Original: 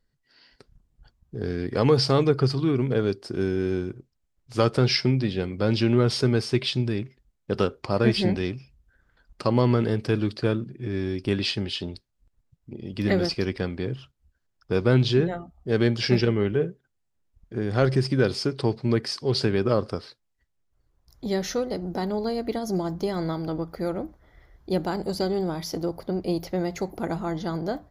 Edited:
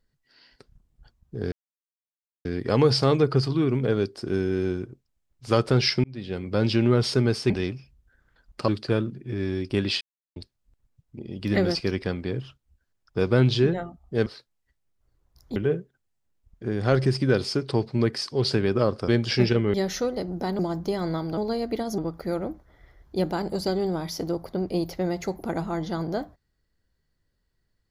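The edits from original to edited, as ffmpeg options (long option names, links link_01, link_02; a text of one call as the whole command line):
ffmpeg -i in.wav -filter_complex "[0:a]asplit=14[link_01][link_02][link_03][link_04][link_05][link_06][link_07][link_08][link_09][link_10][link_11][link_12][link_13][link_14];[link_01]atrim=end=1.52,asetpts=PTS-STARTPTS,afade=type=out:start_time=1.516:duration=0.004:curve=hsin,apad=pad_dur=0.93[link_15];[link_02]atrim=start=1.52:end=5.11,asetpts=PTS-STARTPTS,afade=type=in:duration=0.004:curve=hsin,afade=type=out:start_time=3.586:duration=0.004:curve=hsin[link_16];[link_03]atrim=start=5.11:end=6.572,asetpts=PTS-STARTPTS,afade=type=in:duration=0.46[link_17];[link_04]atrim=start=8.308:end=9.492[link_18];[link_05]atrim=start=10.218:end=11.55,asetpts=PTS-STARTPTS,afade=type=out:start_time=1.328:duration=0.004:curve=hsin[link_19];[link_06]atrim=start=11.55:end=11.9,asetpts=PTS-STARTPTS,volume=0[link_20];[link_07]atrim=start=11.9:end=15.802,asetpts=PTS-STARTPTS,afade=type=in:duration=0.004:curve=hsin[link_21];[link_08]atrim=start=19.978:end=21.282[link_22];[link_09]atrim=start=16.458:end=19.982[link_23];[link_10]atrim=start=15.798:end=16.462[link_24];[link_11]atrim=start=21.278:end=22.132[link_25];[link_12]atrim=start=22.738:end=23.522[link_26];[link_13]atrim=start=22.128:end=22.742[link_27];[link_14]atrim=start=23.518[link_28];[link_15][link_16][link_17]concat=n=3:v=0:a=1[link_29];[link_29][link_18]acrossfade=duration=0.004:curve1=hsin:curve2=hsin[link_30];[link_19][link_20][link_21]concat=n=3:v=0:a=1[link_31];[link_30][link_31]acrossfade=duration=0.004:curve1=hsin:curve2=hsin[link_32];[link_32][link_22]acrossfade=duration=0.004:curve1=hsin:curve2=hsin[link_33];[link_33][link_23]acrossfade=duration=0.004:curve1=hsin:curve2=hsin[link_34];[link_34][link_24]acrossfade=duration=0.004:curve1=hsin:curve2=hsin[link_35];[link_35][link_25]acrossfade=duration=0.004:curve1=hsin:curve2=hsin[link_36];[link_36][link_26]acrossfade=duration=0.004:curve1=hsin:curve2=hsin[link_37];[link_37][link_27]acrossfade=duration=0.004:curve1=hsin:curve2=hsin[link_38];[link_38][link_28]acrossfade=duration=0.004:curve1=hsin:curve2=hsin" out.wav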